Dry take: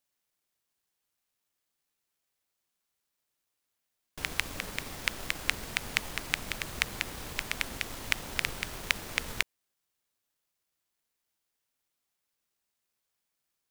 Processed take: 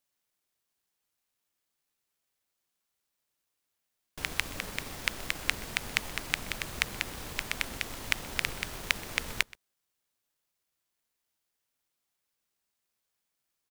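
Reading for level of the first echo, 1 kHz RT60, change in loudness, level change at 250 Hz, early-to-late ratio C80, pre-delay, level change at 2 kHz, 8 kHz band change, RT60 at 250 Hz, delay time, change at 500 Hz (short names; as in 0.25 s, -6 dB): -23.0 dB, none, 0.0 dB, 0.0 dB, none, none, 0.0 dB, 0.0 dB, none, 0.126 s, 0.0 dB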